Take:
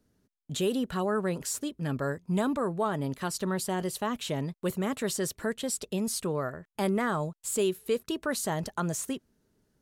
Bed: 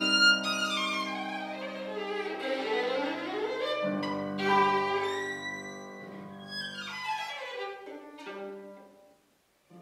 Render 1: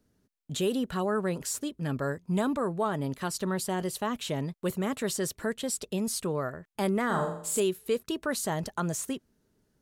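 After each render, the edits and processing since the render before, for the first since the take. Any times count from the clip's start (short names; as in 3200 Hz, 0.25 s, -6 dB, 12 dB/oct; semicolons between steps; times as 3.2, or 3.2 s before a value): 7.06–7.6 flutter echo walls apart 7.2 m, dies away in 0.6 s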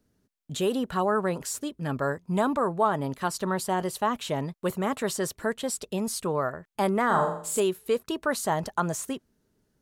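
dynamic EQ 930 Hz, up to +8 dB, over -44 dBFS, Q 0.87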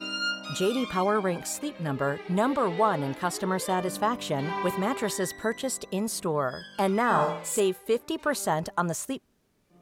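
add bed -7.5 dB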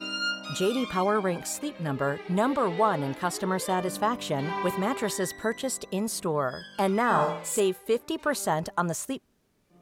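nothing audible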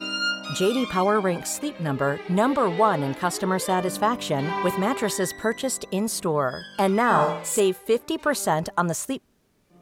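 gain +4 dB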